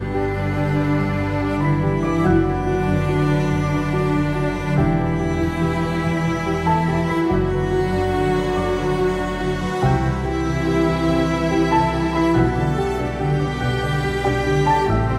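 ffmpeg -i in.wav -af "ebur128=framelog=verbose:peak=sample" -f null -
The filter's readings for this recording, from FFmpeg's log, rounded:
Integrated loudness:
  I:         -19.8 LUFS
  Threshold: -29.8 LUFS
Loudness range:
  LRA:         1.2 LU
  Threshold: -39.7 LUFS
  LRA low:   -20.3 LUFS
  LRA high:  -19.1 LUFS
Sample peak:
  Peak:       -5.6 dBFS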